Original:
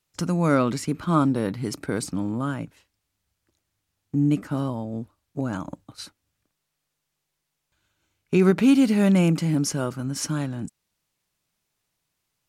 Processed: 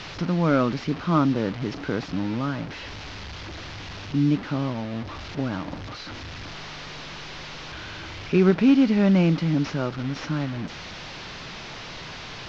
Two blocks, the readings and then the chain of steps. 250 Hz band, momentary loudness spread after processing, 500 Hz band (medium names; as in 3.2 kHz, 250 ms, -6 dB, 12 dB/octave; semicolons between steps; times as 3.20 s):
0.0 dB, 18 LU, 0.0 dB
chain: one-bit delta coder 32 kbps, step -29.5 dBFS; low-pass 4.2 kHz 12 dB/octave; added noise brown -55 dBFS